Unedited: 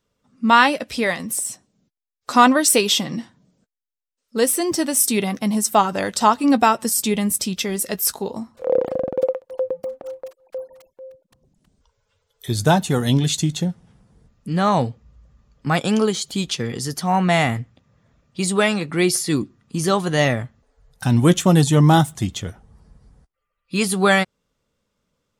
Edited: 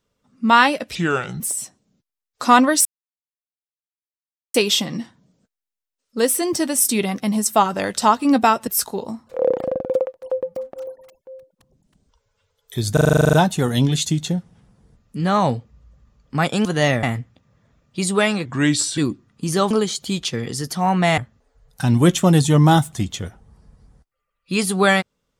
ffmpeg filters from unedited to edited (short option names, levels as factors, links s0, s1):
-filter_complex "[0:a]asplit=22[s0][s1][s2][s3][s4][s5][s6][s7][s8][s9][s10][s11][s12][s13][s14][s15][s16][s17][s18][s19][s20][s21];[s0]atrim=end=0.954[s22];[s1]atrim=start=0.95:end=1.28,asetpts=PTS-STARTPTS,asetrate=32193,aresample=44100[s23];[s2]atrim=start=1.276:end=2.73,asetpts=PTS-STARTPTS,afade=t=out:st=1.45:d=0.004:c=hsin,apad=pad_dur=1.69[s24];[s3]atrim=start=2.73:end=6.862,asetpts=PTS-STARTPTS,afade=t=in:d=0.004:c=hsin[s25];[s4]atrim=start=7.948:end=10.152[s26];[s5]atrim=start=10.588:end=12.692[s27];[s6]atrim=start=12.648:end=12.692[s28];[s7]atrim=start=12.648:end=12.692[s29];[s8]atrim=start=12.648:end=12.692[s30];[s9]atrim=start=12.648:end=12.692[s31];[s10]atrim=start=12.648:end=12.692[s32];[s11]atrim=start=12.648:end=12.692[s33];[s12]atrim=start=12.648:end=12.692[s34];[s13]atrim=start=12.648:end=12.692[s35];[s14]atrim=start=12.648:end=12.692[s36];[s15]atrim=start=12.648:end=15.972[s37];[s16]atrim=start=20.018:end=20.402[s38];[s17]atrim=start=17.438:end=18.864[s39];[s18]atrim=start=18.86:end=19.29,asetpts=PTS-STARTPTS,asetrate=36162,aresample=44100[s40];[s19]atrim=start=19.286:end=20.022[s41];[s20]atrim=start=15.968:end=17.442[s42];[s21]atrim=start=20.398[s43];[s22][s23]acrossfade=d=0.004:c1=hsin:c2=hsin[s44];[s24][s25]concat=n=2:v=0:a=1[s45];[s44][s45]acrossfade=d=0.004:c1=hsin:c2=hsin[s46];[s46][s26]acrossfade=d=0.004:c1=hsin:c2=hsin[s47];[s47][s27]acrossfade=d=0.004:c1=hsin:c2=hsin[s48];[s48][s28]acrossfade=d=0.004:c1=hsin:c2=hsin[s49];[s49][s29]acrossfade=d=0.004:c1=hsin:c2=hsin[s50];[s50][s30]acrossfade=d=0.004:c1=hsin:c2=hsin[s51];[s51][s31]acrossfade=d=0.004:c1=hsin:c2=hsin[s52];[s52][s32]acrossfade=d=0.004:c1=hsin:c2=hsin[s53];[s53][s33]acrossfade=d=0.004:c1=hsin:c2=hsin[s54];[s54][s34]acrossfade=d=0.004:c1=hsin:c2=hsin[s55];[s55][s35]acrossfade=d=0.004:c1=hsin:c2=hsin[s56];[s56][s36]acrossfade=d=0.004:c1=hsin:c2=hsin[s57];[s57][s37]acrossfade=d=0.004:c1=hsin:c2=hsin[s58];[s58][s38]acrossfade=d=0.004:c1=hsin:c2=hsin[s59];[s59][s39]acrossfade=d=0.004:c1=hsin:c2=hsin[s60];[s60][s40]acrossfade=d=0.004:c1=hsin:c2=hsin[s61];[s61][s41]acrossfade=d=0.004:c1=hsin:c2=hsin[s62];[s62][s42]acrossfade=d=0.004:c1=hsin:c2=hsin[s63];[s63][s43]acrossfade=d=0.004:c1=hsin:c2=hsin"